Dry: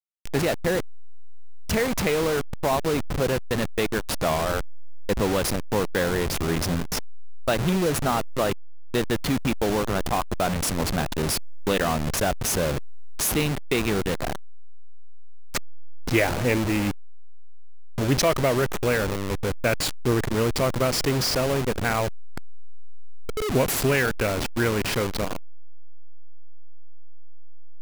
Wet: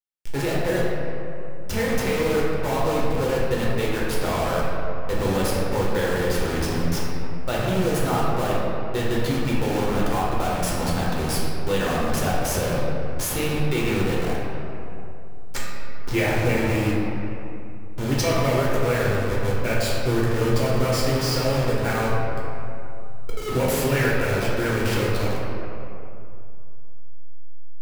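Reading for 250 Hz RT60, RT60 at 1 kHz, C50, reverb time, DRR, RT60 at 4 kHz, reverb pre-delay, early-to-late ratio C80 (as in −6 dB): 2.7 s, 2.6 s, −1.5 dB, 2.6 s, −5.5 dB, 1.5 s, 7 ms, 0.0 dB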